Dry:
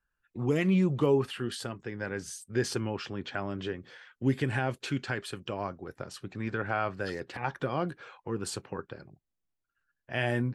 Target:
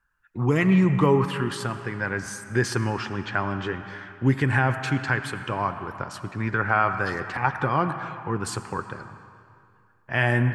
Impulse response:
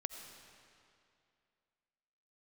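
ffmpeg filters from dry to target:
-filter_complex "[0:a]asplit=2[link_01][link_02];[link_02]equalizer=frequency=125:width_type=o:width=1:gain=3,equalizer=frequency=250:width_type=o:width=1:gain=-3,equalizer=frequency=500:width_type=o:width=1:gain=-11,equalizer=frequency=1000:width_type=o:width=1:gain=10,equalizer=frequency=2000:width_type=o:width=1:gain=5,equalizer=frequency=4000:width_type=o:width=1:gain=-10[link_03];[1:a]atrim=start_sample=2205,highshelf=frequency=8300:gain=-11[link_04];[link_03][link_04]afir=irnorm=-1:irlink=0,volume=5dB[link_05];[link_01][link_05]amix=inputs=2:normalize=0"

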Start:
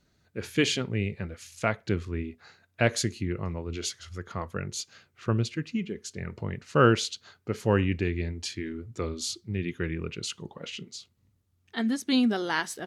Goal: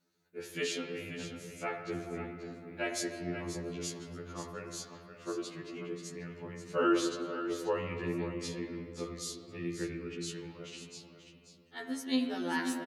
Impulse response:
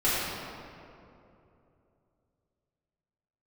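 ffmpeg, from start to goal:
-filter_complex "[0:a]highpass=170,highshelf=frequency=8300:gain=10,aecho=1:1:535:0.316,asplit=2[link_01][link_02];[1:a]atrim=start_sample=2205,lowpass=2800[link_03];[link_02][link_03]afir=irnorm=-1:irlink=0,volume=-15.5dB[link_04];[link_01][link_04]amix=inputs=2:normalize=0,afftfilt=real='re*2*eq(mod(b,4),0)':imag='im*2*eq(mod(b,4),0)':win_size=2048:overlap=0.75,volume=-8dB"

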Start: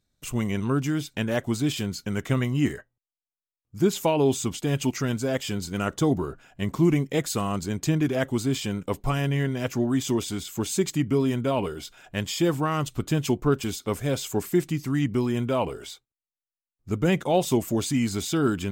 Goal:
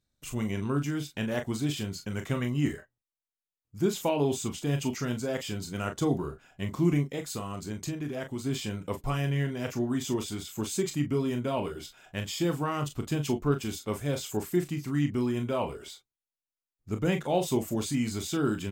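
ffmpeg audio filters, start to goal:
ffmpeg -i in.wav -filter_complex "[0:a]asplit=3[link_01][link_02][link_03];[link_01]afade=type=out:start_time=7.03:duration=0.02[link_04];[link_02]acompressor=threshold=-28dB:ratio=2.5,afade=type=in:start_time=7.03:duration=0.02,afade=type=out:start_time=8.44:duration=0.02[link_05];[link_03]afade=type=in:start_time=8.44:duration=0.02[link_06];[link_04][link_05][link_06]amix=inputs=3:normalize=0,asplit=2[link_07][link_08];[link_08]aecho=0:1:28|41:0.335|0.335[link_09];[link_07][link_09]amix=inputs=2:normalize=0,volume=-5.5dB" out.wav

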